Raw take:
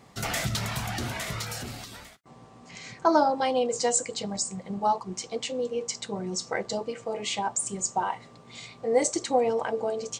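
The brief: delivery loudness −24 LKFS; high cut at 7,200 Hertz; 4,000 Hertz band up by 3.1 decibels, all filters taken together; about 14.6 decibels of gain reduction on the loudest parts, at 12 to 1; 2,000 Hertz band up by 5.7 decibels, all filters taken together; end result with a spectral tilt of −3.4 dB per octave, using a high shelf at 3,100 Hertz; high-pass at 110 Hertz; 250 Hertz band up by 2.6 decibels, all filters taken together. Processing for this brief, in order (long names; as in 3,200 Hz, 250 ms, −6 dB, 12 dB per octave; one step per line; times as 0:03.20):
high-pass filter 110 Hz
low-pass filter 7,200 Hz
parametric band 250 Hz +3.5 dB
parametric band 2,000 Hz +7.5 dB
high-shelf EQ 3,100 Hz −6.5 dB
parametric band 4,000 Hz +7 dB
downward compressor 12 to 1, threshold −30 dBFS
level +11 dB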